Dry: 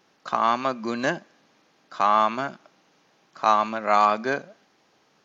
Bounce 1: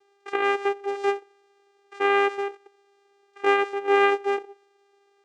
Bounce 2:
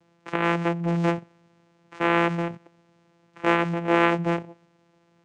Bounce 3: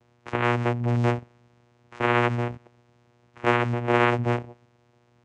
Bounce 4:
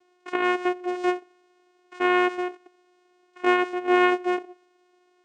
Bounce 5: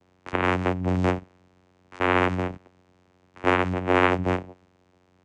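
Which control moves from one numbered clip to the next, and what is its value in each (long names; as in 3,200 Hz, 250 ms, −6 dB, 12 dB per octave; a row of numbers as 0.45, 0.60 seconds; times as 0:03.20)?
channel vocoder, frequency: 400, 170, 120, 360, 91 Hertz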